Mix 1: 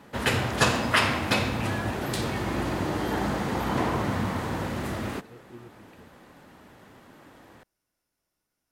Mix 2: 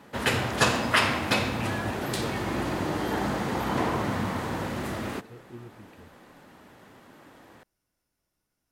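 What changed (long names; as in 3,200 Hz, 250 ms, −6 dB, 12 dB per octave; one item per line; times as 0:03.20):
speech: add low-shelf EQ 160 Hz +11 dB
master: add low-shelf EQ 100 Hz −5.5 dB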